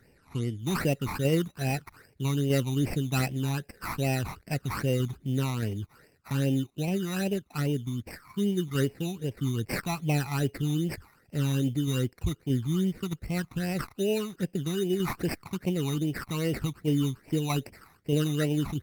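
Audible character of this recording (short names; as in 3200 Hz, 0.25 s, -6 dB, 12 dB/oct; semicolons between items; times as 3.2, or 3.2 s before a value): aliases and images of a low sample rate 3300 Hz, jitter 0%; tremolo saw down 1.6 Hz, depth 30%; phasing stages 12, 2.5 Hz, lowest notch 500–1300 Hz; Opus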